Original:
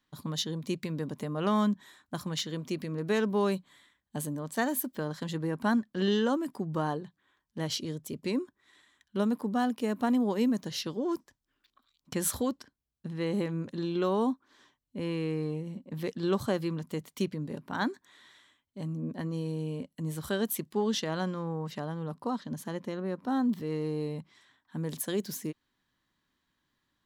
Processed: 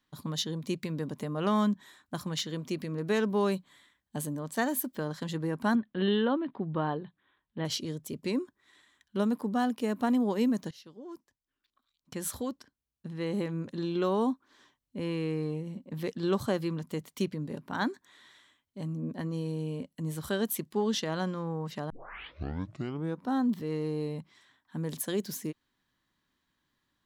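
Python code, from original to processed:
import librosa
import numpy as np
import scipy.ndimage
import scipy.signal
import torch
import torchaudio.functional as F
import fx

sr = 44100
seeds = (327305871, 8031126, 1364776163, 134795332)

y = fx.steep_lowpass(x, sr, hz=4000.0, slope=72, at=(5.75, 7.65))
y = fx.edit(y, sr, fx.fade_in_from(start_s=10.71, length_s=3.17, floor_db=-19.0),
    fx.tape_start(start_s=21.9, length_s=1.35), tone=tone)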